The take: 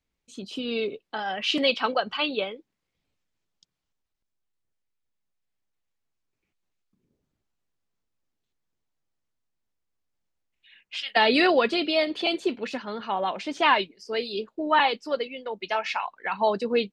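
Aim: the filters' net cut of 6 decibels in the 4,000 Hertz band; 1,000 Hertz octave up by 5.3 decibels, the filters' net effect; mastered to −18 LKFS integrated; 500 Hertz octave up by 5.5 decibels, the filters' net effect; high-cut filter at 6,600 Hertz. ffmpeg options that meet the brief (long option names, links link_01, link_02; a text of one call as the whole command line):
ffmpeg -i in.wav -af "lowpass=6600,equalizer=frequency=500:width_type=o:gain=5.5,equalizer=frequency=1000:width_type=o:gain=5,equalizer=frequency=4000:width_type=o:gain=-9,volume=4dB" out.wav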